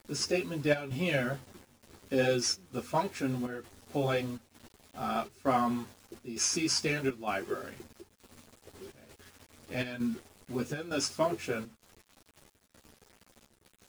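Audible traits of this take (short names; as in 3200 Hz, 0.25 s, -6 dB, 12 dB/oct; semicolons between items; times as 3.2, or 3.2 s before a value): a quantiser's noise floor 8-bit, dither none; chopped level 1.1 Hz, depth 65%, duty 80%; a shimmering, thickened sound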